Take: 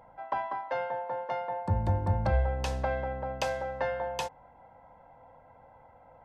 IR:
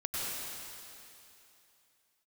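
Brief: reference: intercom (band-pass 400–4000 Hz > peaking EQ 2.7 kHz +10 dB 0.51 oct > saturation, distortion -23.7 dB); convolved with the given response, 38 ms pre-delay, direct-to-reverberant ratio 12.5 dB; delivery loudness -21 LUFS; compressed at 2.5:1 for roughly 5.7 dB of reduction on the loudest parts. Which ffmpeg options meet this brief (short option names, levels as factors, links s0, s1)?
-filter_complex "[0:a]acompressor=threshold=0.0316:ratio=2.5,asplit=2[s0][s1];[1:a]atrim=start_sample=2205,adelay=38[s2];[s1][s2]afir=irnorm=-1:irlink=0,volume=0.126[s3];[s0][s3]amix=inputs=2:normalize=0,highpass=400,lowpass=4000,equalizer=f=2700:t=o:w=0.51:g=10,asoftclip=threshold=0.0944,volume=5.96"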